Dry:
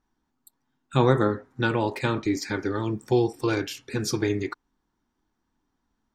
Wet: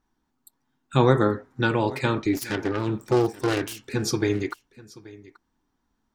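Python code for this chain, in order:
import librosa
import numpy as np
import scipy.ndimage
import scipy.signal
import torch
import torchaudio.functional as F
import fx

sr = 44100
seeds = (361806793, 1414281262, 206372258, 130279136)

p1 = fx.self_delay(x, sr, depth_ms=0.4, at=(2.33, 3.93))
p2 = p1 + fx.echo_single(p1, sr, ms=831, db=-20.5, dry=0)
y = F.gain(torch.from_numpy(p2), 1.5).numpy()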